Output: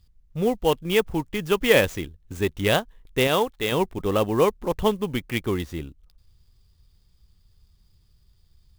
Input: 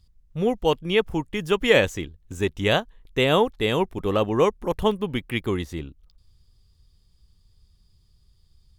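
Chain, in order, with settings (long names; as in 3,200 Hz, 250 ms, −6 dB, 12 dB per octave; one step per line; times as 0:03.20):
0:03.27–0:03.72: low-shelf EQ 460 Hz −6.5 dB
converter with an unsteady clock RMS 0.021 ms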